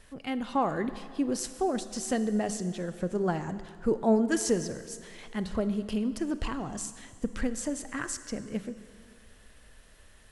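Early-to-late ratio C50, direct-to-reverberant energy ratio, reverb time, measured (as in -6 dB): 12.5 dB, 11.5 dB, 2.1 s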